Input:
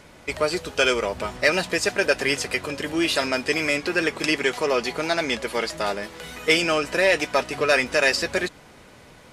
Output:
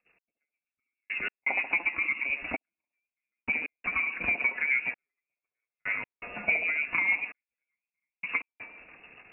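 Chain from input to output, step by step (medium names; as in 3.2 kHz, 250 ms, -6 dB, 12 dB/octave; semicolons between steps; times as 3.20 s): low-pass that closes with the level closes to 540 Hz, closed at -18.5 dBFS; gate -45 dBFS, range -32 dB; peaking EQ 76 Hz +7.5 dB 0.59 oct; de-hum 118.4 Hz, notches 12; reverse; upward compressor, threshold -35 dBFS; reverse; frequency inversion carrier 2.7 kHz; rotary cabinet horn 6.7 Hz; on a send: feedback echo behind a band-pass 69 ms, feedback 59%, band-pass 470 Hz, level -3 dB; on the sum: trance gate "x.....x.xxxxx" 82 bpm -60 dB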